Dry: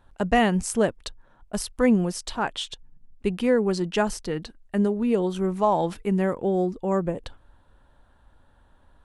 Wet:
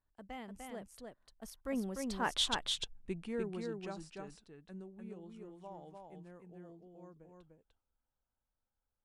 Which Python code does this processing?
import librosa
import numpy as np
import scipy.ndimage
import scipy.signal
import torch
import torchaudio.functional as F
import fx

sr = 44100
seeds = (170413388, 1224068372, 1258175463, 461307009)

p1 = fx.doppler_pass(x, sr, speed_mps=26, closest_m=1.9, pass_at_s=2.49)
p2 = p1 + fx.echo_single(p1, sr, ms=298, db=-3.5, dry=0)
y = F.gain(torch.from_numpy(p2), 3.0).numpy()